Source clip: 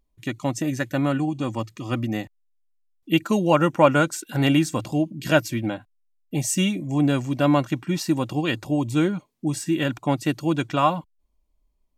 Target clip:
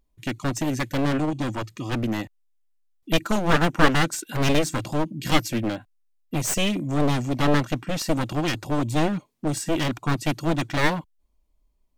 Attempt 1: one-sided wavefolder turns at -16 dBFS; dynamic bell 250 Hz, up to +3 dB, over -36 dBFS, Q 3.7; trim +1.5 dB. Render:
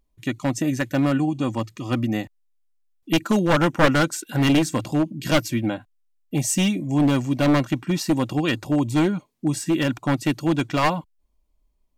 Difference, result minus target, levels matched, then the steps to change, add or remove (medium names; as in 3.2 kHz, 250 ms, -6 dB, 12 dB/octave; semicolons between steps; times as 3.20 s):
one-sided wavefolder: distortion -12 dB
change: one-sided wavefolder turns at -24.5 dBFS